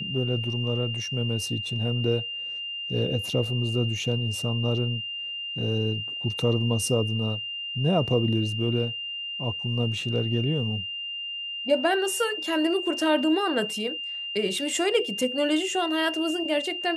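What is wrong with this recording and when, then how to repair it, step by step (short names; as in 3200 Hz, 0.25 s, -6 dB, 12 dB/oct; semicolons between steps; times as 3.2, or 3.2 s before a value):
tone 2800 Hz -31 dBFS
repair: notch 2800 Hz, Q 30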